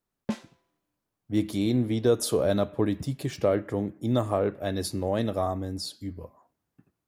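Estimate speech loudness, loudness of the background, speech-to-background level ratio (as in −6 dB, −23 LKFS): −27.5 LKFS, −36.5 LKFS, 9.0 dB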